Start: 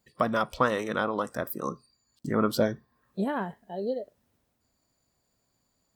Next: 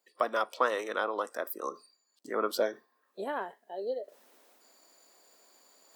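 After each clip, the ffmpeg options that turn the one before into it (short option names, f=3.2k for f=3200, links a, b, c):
-af "highpass=f=350:w=0.5412,highpass=f=350:w=1.3066,areverse,acompressor=mode=upward:threshold=-44dB:ratio=2.5,areverse,volume=-2.5dB"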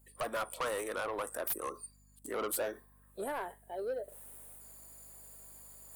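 -af "highshelf=f=7.2k:t=q:w=3:g=11.5,asoftclip=type=tanh:threshold=-30.5dB,aeval=exprs='val(0)+0.000708*(sin(2*PI*50*n/s)+sin(2*PI*2*50*n/s)/2+sin(2*PI*3*50*n/s)/3+sin(2*PI*4*50*n/s)/4+sin(2*PI*5*50*n/s)/5)':c=same"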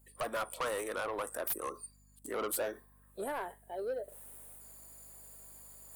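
-af anull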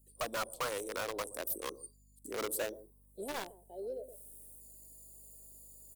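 -filter_complex "[0:a]acrossover=split=640|4200[a][b][c];[a]aecho=1:1:123:0.266[d];[b]acrusher=bits=5:mix=0:aa=0.000001[e];[d][e][c]amix=inputs=3:normalize=0,volume=-1.5dB"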